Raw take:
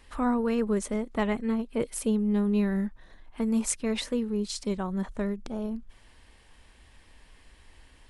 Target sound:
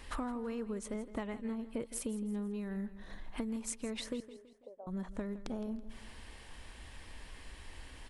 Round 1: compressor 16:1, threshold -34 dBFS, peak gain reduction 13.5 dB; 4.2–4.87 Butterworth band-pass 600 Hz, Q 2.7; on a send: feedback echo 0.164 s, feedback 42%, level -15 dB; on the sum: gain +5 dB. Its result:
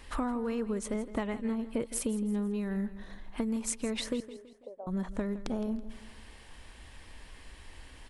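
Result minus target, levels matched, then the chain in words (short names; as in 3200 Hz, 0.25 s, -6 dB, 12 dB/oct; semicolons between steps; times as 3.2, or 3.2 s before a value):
compressor: peak gain reduction -6 dB
compressor 16:1, threshold -40.5 dBFS, peak gain reduction 20 dB; 4.2–4.87 Butterworth band-pass 600 Hz, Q 2.7; on a send: feedback echo 0.164 s, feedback 42%, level -15 dB; on the sum: gain +5 dB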